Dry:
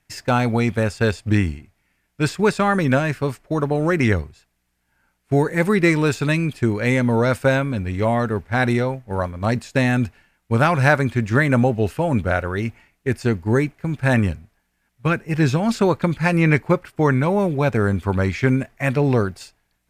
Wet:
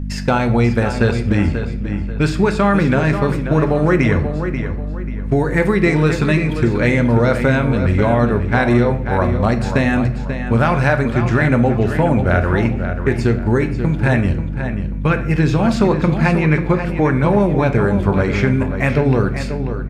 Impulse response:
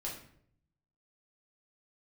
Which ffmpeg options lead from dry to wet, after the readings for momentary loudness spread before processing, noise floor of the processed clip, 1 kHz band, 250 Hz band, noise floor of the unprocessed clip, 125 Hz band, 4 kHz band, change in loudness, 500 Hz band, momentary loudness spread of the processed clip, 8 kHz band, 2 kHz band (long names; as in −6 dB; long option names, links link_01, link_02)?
8 LU, −23 dBFS, +3.0 dB, +4.5 dB, −70 dBFS, +4.5 dB, +1.5 dB, +3.5 dB, +3.5 dB, 6 LU, can't be measured, +2.5 dB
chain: -filter_complex "[0:a]highshelf=frequency=7600:gain=-11.5,aeval=exprs='val(0)+0.0355*(sin(2*PI*50*n/s)+sin(2*PI*2*50*n/s)/2+sin(2*PI*3*50*n/s)/3+sin(2*PI*4*50*n/s)/4+sin(2*PI*5*50*n/s)/5)':channel_layout=same,acompressor=threshold=-19dB:ratio=6,asplit=2[link_01][link_02];[link_02]adelay=537,lowpass=frequency=4600:poles=1,volume=-8.5dB,asplit=2[link_03][link_04];[link_04]adelay=537,lowpass=frequency=4600:poles=1,volume=0.34,asplit=2[link_05][link_06];[link_06]adelay=537,lowpass=frequency=4600:poles=1,volume=0.34,asplit=2[link_07][link_08];[link_08]adelay=537,lowpass=frequency=4600:poles=1,volume=0.34[link_09];[link_01][link_03][link_05][link_07][link_09]amix=inputs=5:normalize=0,asplit=2[link_10][link_11];[1:a]atrim=start_sample=2205[link_12];[link_11][link_12]afir=irnorm=-1:irlink=0,volume=-4dB[link_13];[link_10][link_13]amix=inputs=2:normalize=0,volume=4.5dB"